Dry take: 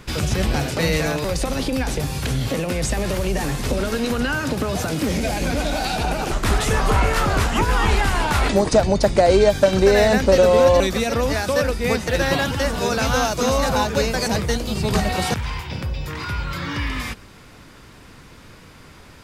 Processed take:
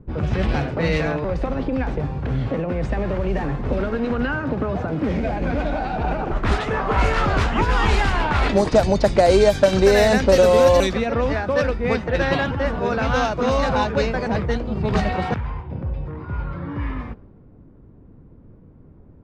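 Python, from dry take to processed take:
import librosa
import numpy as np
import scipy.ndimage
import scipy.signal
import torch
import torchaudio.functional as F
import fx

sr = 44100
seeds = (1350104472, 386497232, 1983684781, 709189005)

y = fx.low_shelf(x, sr, hz=110.0, db=-11.5, at=(6.55, 6.97))
y = fx.env_lowpass(y, sr, base_hz=340.0, full_db=-10.5)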